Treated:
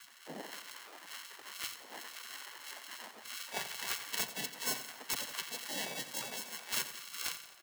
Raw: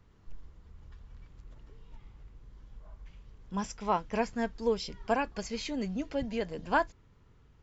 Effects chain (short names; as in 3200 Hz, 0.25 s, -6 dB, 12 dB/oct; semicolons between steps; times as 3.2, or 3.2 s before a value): wind noise 610 Hz -42 dBFS; steep low-pass 4600 Hz 72 dB/oct; notch 860 Hz, Q 14; in parallel at -2 dB: compressor 6:1, threshold -42 dBFS, peak gain reduction 18.5 dB; on the sum: sample-and-hold 38×; spectral gate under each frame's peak -20 dB weak; frequency shift +120 Hz; wrapped overs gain 20.5 dB; on a send: feedback echo 87 ms, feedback 53%, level -12 dB; on the sum: noise-modulated level, depth 50%; gain +6 dB